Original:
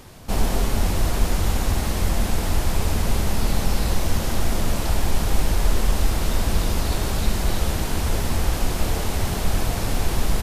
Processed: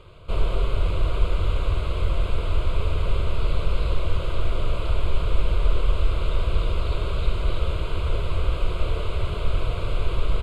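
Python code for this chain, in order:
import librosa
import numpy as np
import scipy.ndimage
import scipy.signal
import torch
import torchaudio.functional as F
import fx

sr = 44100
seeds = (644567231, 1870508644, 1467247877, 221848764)

y = fx.air_absorb(x, sr, metres=130.0)
y = fx.fixed_phaser(y, sr, hz=1200.0, stages=8)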